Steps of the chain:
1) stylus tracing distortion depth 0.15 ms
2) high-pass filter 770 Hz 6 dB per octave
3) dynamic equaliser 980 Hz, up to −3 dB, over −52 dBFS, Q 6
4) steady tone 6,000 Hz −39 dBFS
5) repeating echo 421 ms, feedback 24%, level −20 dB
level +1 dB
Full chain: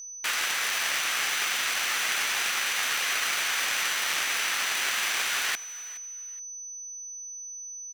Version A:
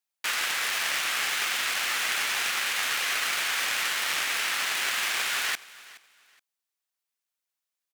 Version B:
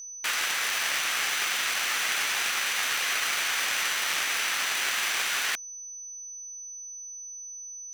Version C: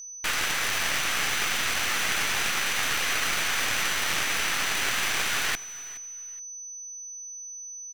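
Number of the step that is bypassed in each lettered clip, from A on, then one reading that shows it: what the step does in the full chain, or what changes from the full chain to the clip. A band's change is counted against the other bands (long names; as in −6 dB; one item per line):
4, 8 kHz band −3.0 dB
5, change in integrated loudness +1.0 LU
2, 250 Hz band +9.0 dB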